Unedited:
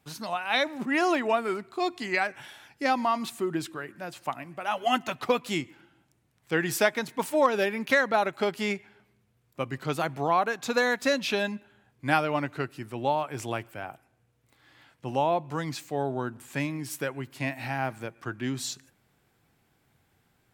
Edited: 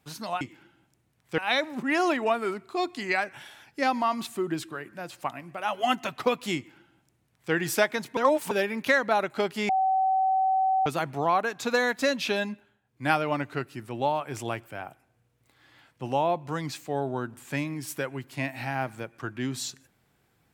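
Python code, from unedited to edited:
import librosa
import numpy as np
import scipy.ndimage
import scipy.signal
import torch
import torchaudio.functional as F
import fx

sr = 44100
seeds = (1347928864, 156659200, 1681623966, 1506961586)

y = fx.edit(x, sr, fx.duplicate(start_s=5.59, length_s=0.97, to_s=0.41),
    fx.reverse_span(start_s=7.2, length_s=0.34),
    fx.bleep(start_s=8.72, length_s=1.17, hz=762.0, db=-20.5),
    fx.fade_down_up(start_s=11.55, length_s=0.6, db=-12.0, fade_s=0.28), tone=tone)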